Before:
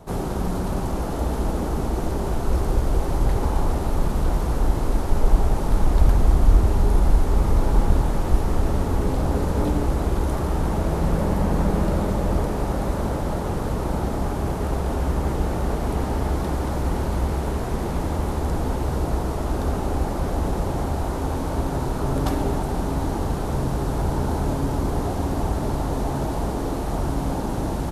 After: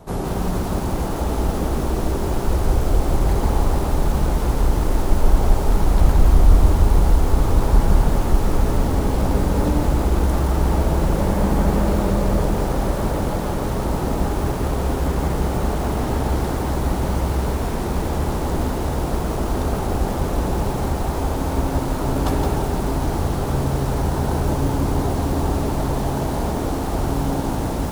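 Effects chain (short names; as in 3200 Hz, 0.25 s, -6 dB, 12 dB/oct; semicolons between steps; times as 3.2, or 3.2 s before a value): diffused feedback echo 0.908 s, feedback 48%, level -15.5 dB; lo-fi delay 0.168 s, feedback 35%, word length 6-bit, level -4 dB; gain +1.5 dB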